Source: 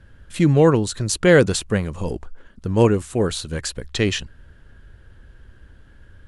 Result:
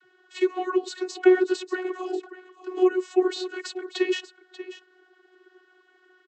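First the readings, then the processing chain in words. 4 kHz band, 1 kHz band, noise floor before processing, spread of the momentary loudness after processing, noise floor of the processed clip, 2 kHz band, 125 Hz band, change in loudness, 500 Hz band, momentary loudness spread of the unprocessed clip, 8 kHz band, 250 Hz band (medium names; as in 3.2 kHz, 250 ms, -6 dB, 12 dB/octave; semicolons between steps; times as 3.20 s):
-8.0 dB, -4.5 dB, -49 dBFS, 20 LU, -63 dBFS, -7.5 dB, under -40 dB, -6.0 dB, -4.0 dB, 15 LU, -15.5 dB, -5.0 dB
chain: coarse spectral quantiser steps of 15 dB; low-pass 1.6 kHz 6 dB/octave; de-esser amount 90%; tilt EQ +4 dB/octave; compression 6:1, threshold -24 dBFS, peak gain reduction 8.5 dB; on a send: delay 588 ms -14.5 dB; on the sum: vocoder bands 32, saw 368 Hz; trim +7 dB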